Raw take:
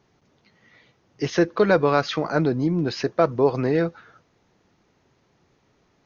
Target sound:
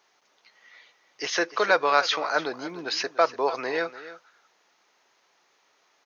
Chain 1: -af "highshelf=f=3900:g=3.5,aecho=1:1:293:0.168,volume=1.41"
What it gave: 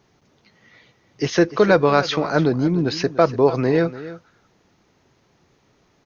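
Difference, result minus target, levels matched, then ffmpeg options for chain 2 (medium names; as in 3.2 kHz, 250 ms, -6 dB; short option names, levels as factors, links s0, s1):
1 kHz band -5.0 dB
-af "highpass=790,highshelf=f=3900:g=3.5,aecho=1:1:293:0.168,volume=1.41"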